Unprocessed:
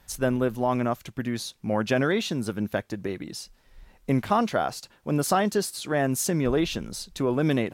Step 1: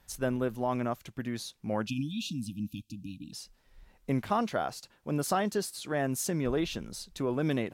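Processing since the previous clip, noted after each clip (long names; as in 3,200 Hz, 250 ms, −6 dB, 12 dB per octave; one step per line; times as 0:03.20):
time-frequency box erased 0:01.87–0:03.33, 320–2,400 Hz
level −6 dB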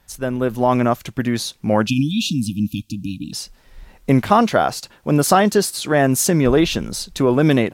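automatic gain control gain up to 9 dB
level +6 dB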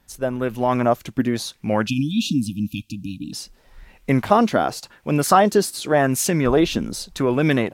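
auto-filter bell 0.88 Hz 250–2,600 Hz +8 dB
level −4 dB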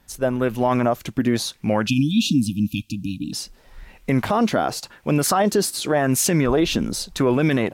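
brickwall limiter −13 dBFS, peak gain reduction 11.5 dB
level +3 dB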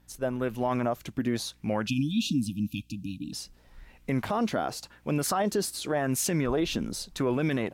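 mains hum 60 Hz, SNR 33 dB
level −8.5 dB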